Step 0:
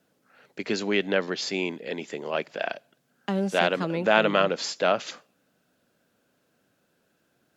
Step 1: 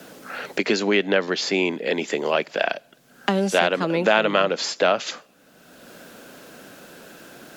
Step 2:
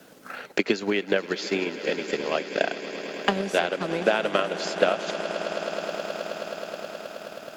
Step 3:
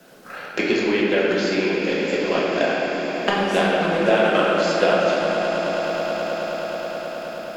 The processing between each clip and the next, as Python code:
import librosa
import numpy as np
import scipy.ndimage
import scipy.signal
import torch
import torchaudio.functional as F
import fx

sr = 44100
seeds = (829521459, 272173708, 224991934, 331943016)

y1 = fx.peak_eq(x, sr, hz=97.0, db=-9.0, octaves=1.4)
y1 = fx.band_squash(y1, sr, depth_pct=70)
y1 = y1 * 10.0 ** (5.5 / 20.0)
y2 = fx.echo_swell(y1, sr, ms=106, loudest=8, wet_db=-14.0)
y2 = fx.transient(y2, sr, attack_db=9, sustain_db=-4)
y2 = y2 * 10.0 ** (-8.0 / 20.0)
y3 = fx.room_shoebox(y2, sr, seeds[0], volume_m3=200.0, walls='hard', distance_m=0.93)
y3 = y3 * 10.0 ** (-1.0 / 20.0)